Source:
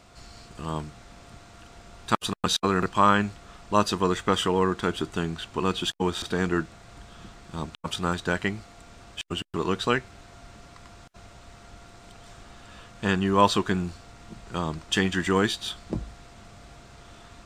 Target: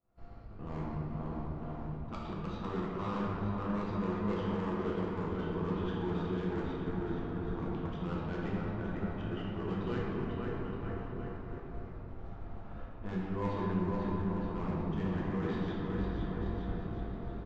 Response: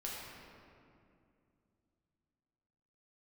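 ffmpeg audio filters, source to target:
-filter_complex "[0:a]areverse,acompressor=threshold=-33dB:ratio=6,areverse,aecho=1:1:500|925|1286|1593|1854:0.631|0.398|0.251|0.158|0.1,adynamicsmooth=sensitivity=0.5:basefreq=1100,agate=range=-33dB:threshold=-41dB:ratio=3:detection=peak,aresample=16000,asoftclip=type=hard:threshold=-32dB,aresample=44100,alimiter=level_in=10.5dB:limit=-24dB:level=0:latency=1,volume=-10.5dB[link_01];[1:a]atrim=start_sample=2205[link_02];[link_01][link_02]afir=irnorm=-1:irlink=0,volume=4.5dB"

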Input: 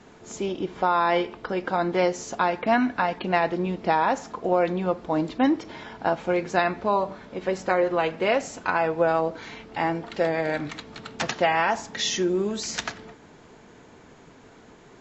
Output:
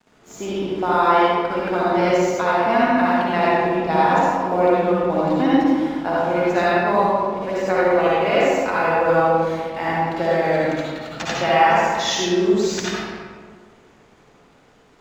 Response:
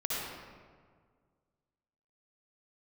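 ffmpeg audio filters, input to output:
-filter_complex "[0:a]aeval=exprs='sgn(val(0))*max(abs(val(0))-0.00335,0)':channel_layout=same[link_01];[1:a]atrim=start_sample=2205[link_02];[link_01][link_02]afir=irnorm=-1:irlink=0"

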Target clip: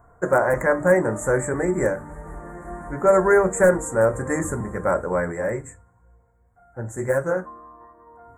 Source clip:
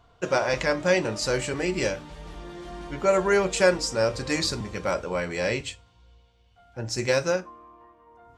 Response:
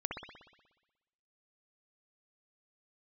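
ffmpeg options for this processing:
-filter_complex "[0:a]bandreject=frequency=50:width_type=h:width=6,bandreject=frequency=100:width_type=h:width=6,bandreject=frequency=150:width_type=h:width=6,bandreject=frequency=200:width_type=h:width=6,bandreject=frequency=250:width_type=h:width=6,bandreject=frequency=300:width_type=h:width=6,bandreject=frequency=350:width_type=h:width=6,aeval=exprs='0.237*(abs(mod(val(0)/0.237+3,4)-2)-1)':channel_layout=same,asplit=3[link_01][link_02][link_03];[link_01]afade=type=out:start_time=5.31:duration=0.02[link_04];[link_02]flanger=delay=5.5:depth=6.6:regen=-42:speed=1.8:shape=sinusoidal,afade=type=in:start_time=5.31:duration=0.02,afade=type=out:start_time=7.36:duration=0.02[link_05];[link_03]afade=type=in:start_time=7.36:duration=0.02[link_06];[link_04][link_05][link_06]amix=inputs=3:normalize=0,asuperstop=centerf=3800:order=12:qfactor=0.7,volume=5.5dB"

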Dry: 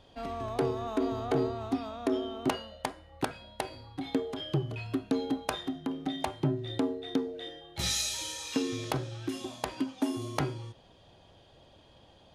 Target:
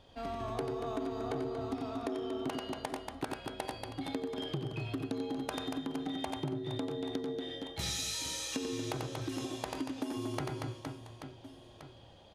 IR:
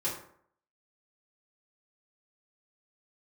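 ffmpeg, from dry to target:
-af "aecho=1:1:90|234|464.4|833|1423:0.631|0.398|0.251|0.158|0.1,acompressor=threshold=-31dB:ratio=6,volume=-2dB"

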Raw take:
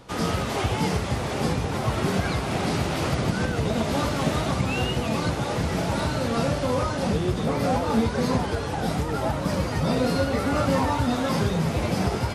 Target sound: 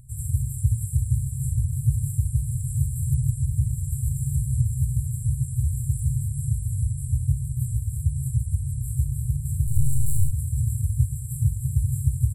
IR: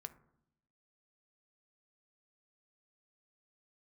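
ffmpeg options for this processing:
-filter_complex "[0:a]aecho=1:1:427:0.0631,asplit=3[link_01][link_02][link_03];[link_01]afade=type=out:start_time=9.66:duration=0.02[link_04];[link_02]aeval=exprs='0.282*(cos(1*acos(clip(val(0)/0.282,-1,1)))-cos(1*PI/2))+0.0708*(cos(8*acos(clip(val(0)/0.282,-1,1)))-cos(8*PI/2))':channel_layout=same,afade=type=in:start_time=9.66:duration=0.02,afade=type=out:start_time=10.3:duration=0.02[link_05];[link_03]afade=type=in:start_time=10.3:duration=0.02[link_06];[link_04][link_05][link_06]amix=inputs=3:normalize=0,afftfilt=real='re*(1-between(b*sr/4096,150,7300))':imag='im*(1-between(b*sr/4096,150,7300))':win_size=4096:overlap=0.75,volume=6.5dB"

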